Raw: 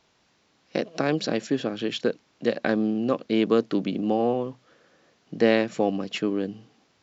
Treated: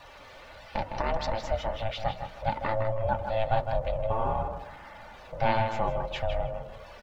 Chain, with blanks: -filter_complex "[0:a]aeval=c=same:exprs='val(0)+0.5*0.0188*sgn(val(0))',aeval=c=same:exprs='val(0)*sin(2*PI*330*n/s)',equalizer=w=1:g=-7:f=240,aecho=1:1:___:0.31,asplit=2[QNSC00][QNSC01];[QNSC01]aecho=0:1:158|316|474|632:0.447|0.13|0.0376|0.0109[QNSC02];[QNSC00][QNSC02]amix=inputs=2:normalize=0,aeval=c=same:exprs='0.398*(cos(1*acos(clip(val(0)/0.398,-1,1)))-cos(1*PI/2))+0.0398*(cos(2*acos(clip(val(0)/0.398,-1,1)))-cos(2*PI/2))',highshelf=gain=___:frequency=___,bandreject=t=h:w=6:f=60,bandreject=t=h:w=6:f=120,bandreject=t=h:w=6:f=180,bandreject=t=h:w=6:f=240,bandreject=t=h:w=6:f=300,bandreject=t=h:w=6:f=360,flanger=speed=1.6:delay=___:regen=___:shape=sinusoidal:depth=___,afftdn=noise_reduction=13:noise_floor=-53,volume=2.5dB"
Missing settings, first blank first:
3.4, -10, 4100, 1.1, -48, 6.9